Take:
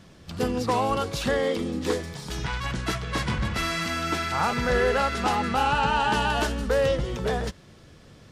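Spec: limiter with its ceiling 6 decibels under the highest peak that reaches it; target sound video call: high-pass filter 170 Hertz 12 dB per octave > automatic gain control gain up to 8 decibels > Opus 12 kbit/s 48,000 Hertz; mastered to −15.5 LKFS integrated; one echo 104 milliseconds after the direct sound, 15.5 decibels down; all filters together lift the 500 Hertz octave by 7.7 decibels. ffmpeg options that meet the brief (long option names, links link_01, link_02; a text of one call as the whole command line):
ffmpeg -i in.wav -af "equalizer=frequency=500:width_type=o:gain=8.5,alimiter=limit=-12.5dB:level=0:latency=1,highpass=170,aecho=1:1:104:0.168,dynaudnorm=maxgain=8dB,volume=9dB" -ar 48000 -c:a libopus -b:a 12k out.opus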